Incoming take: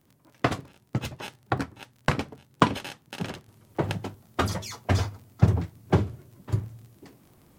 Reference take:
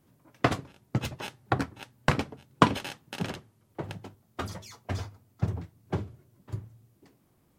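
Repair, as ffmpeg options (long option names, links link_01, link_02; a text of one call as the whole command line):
ffmpeg -i in.wav -af "adeclick=threshold=4,asetnsamples=nb_out_samples=441:pad=0,asendcmd='3.48 volume volume -9.5dB',volume=0dB" out.wav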